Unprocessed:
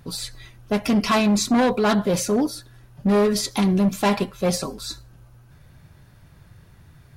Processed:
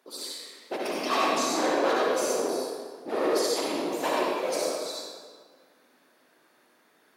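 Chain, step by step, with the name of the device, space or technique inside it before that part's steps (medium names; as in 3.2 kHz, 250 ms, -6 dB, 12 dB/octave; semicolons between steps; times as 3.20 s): whispering ghost (whisper effect; high-pass 350 Hz 24 dB/octave; reverberation RT60 1.7 s, pre-delay 55 ms, DRR -4.5 dB); trim -9 dB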